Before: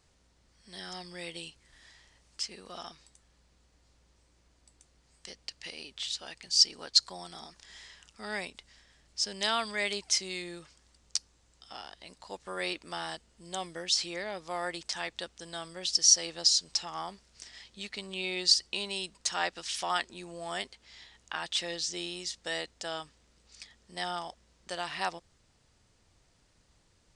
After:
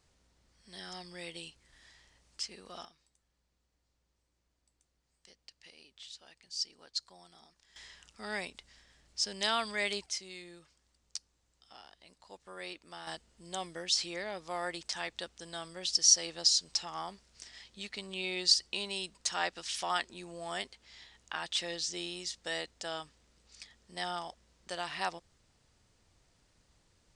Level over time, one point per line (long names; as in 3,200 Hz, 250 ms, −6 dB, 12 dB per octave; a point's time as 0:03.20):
−3 dB
from 0:02.85 −13.5 dB
from 0:07.76 −1.5 dB
from 0:10.06 −9.5 dB
from 0:13.07 −2 dB